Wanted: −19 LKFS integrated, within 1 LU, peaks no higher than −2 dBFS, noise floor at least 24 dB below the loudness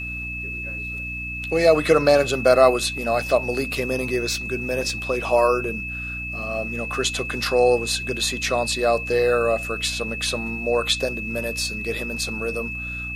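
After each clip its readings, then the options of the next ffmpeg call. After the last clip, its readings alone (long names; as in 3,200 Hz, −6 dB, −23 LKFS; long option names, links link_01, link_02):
mains hum 60 Hz; hum harmonics up to 300 Hz; level of the hum −33 dBFS; interfering tone 2,600 Hz; level of the tone −29 dBFS; integrated loudness −22.0 LKFS; sample peak −3.0 dBFS; target loudness −19.0 LKFS
→ -af "bandreject=frequency=60:width_type=h:width=6,bandreject=frequency=120:width_type=h:width=6,bandreject=frequency=180:width_type=h:width=6,bandreject=frequency=240:width_type=h:width=6,bandreject=frequency=300:width_type=h:width=6"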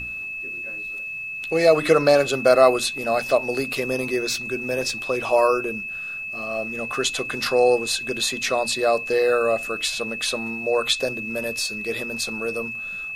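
mains hum none found; interfering tone 2,600 Hz; level of the tone −29 dBFS
→ -af "bandreject=frequency=2600:width=30"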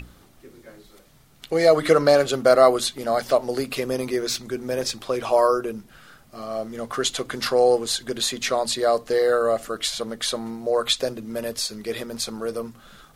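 interfering tone none found; integrated loudness −22.5 LKFS; sample peak −3.0 dBFS; target loudness −19.0 LKFS
→ -af "volume=3.5dB,alimiter=limit=-2dB:level=0:latency=1"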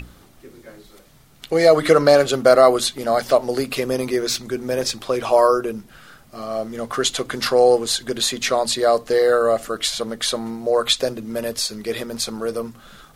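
integrated loudness −19.0 LKFS; sample peak −2.0 dBFS; background noise floor −50 dBFS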